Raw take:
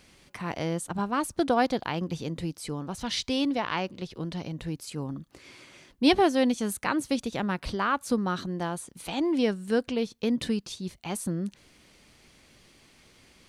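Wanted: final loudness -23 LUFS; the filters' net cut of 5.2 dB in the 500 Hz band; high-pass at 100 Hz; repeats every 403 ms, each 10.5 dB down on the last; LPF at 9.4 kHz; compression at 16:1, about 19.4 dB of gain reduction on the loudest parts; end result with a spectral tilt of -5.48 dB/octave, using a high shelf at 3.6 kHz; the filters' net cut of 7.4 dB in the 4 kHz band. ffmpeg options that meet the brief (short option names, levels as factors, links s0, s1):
-af "highpass=100,lowpass=9400,equalizer=f=500:t=o:g=-6.5,highshelf=f=3600:g=-5.5,equalizer=f=4000:t=o:g=-6,acompressor=threshold=0.0126:ratio=16,aecho=1:1:403|806|1209:0.299|0.0896|0.0269,volume=10"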